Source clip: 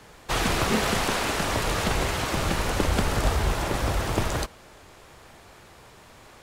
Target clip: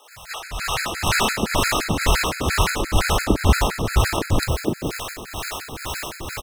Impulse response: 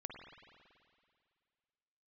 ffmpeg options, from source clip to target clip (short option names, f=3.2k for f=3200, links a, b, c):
-filter_complex "[0:a]aeval=exprs='val(0)+0.5*0.0224*sgn(val(0))':c=same,acrossover=split=420[a][b];[a]aeval=exprs='val(0)*(1-0.7/2+0.7/2*cos(2*PI*2.1*n/s))':c=same[c];[b]aeval=exprs='val(0)*(1-0.7/2-0.7/2*cos(2*PI*2.1*n/s))':c=same[d];[c][d]amix=inputs=2:normalize=0,dynaudnorm=f=530:g=3:m=14dB,acrossover=split=150|570[e][f][g];[e]adelay=130[h];[f]adelay=500[i];[h][i][g]amix=inputs=3:normalize=0,afftfilt=real='re*gt(sin(2*PI*5.8*pts/sr)*(1-2*mod(floor(b*sr/1024/1300),2)),0)':imag='im*gt(sin(2*PI*5.8*pts/sr)*(1-2*mod(floor(b*sr/1024/1300),2)),0)':win_size=1024:overlap=0.75"